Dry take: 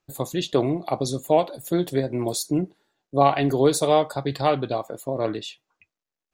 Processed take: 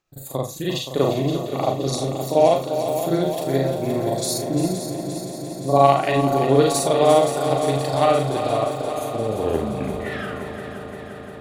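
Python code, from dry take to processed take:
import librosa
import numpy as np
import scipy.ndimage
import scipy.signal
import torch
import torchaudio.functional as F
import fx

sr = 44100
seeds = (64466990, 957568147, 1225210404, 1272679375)

p1 = fx.tape_stop_end(x, sr, length_s=1.43)
p2 = fx.stretch_grains(p1, sr, factor=1.8, grain_ms=169.0)
p3 = fx.doubler(p2, sr, ms=36.0, db=-7.5)
p4 = p3 + fx.echo_heads(p3, sr, ms=174, heads='second and third', feedback_pct=72, wet_db=-10, dry=0)
y = p4 * librosa.db_to_amplitude(2.0)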